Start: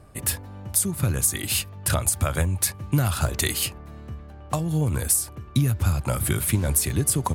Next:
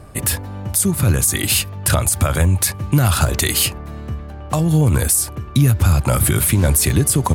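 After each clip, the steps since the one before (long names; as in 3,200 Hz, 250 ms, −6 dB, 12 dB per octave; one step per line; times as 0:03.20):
boost into a limiter +14.5 dB
level −4.5 dB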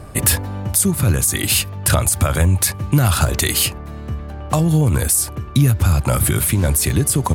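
speech leveller within 4 dB 0.5 s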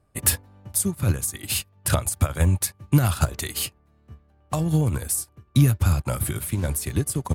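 expander for the loud parts 2.5 to 1, over −29 dBFS
level −1.5 dB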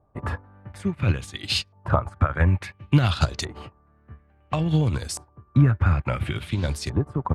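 auto-filter low-pass saw up 0.58 Hz 860–5,300 Hz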